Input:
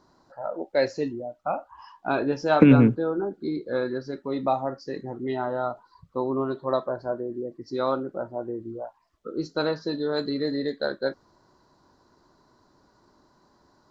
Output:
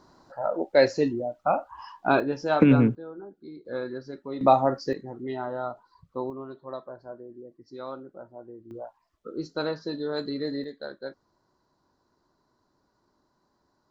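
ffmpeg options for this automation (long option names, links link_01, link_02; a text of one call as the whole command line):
ffmpeg -i in.wav -af "asetnsamples=nb_out_samples=441:pad=0,asendcmd='2.2 volume volume -3dB;2.95 volume volume -14dB;3.65 volume volume -5.5dB;4.41 volume volume 6dB;4.93 volume volume -4dB;6.3 volume volume -12dB;8.71 volume volume -3.5dB;10.64 volume volume -10dB',volume=4dB" out.wav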